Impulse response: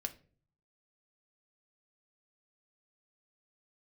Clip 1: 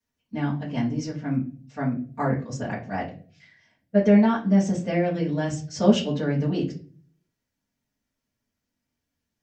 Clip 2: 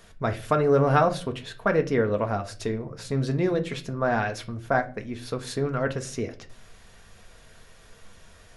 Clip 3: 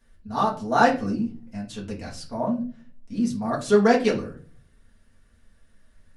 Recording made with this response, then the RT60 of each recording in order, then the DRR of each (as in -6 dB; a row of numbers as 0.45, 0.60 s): 2; 0.40, 0.45, 0.40 s; -11.0, 5.5, -4.0 dB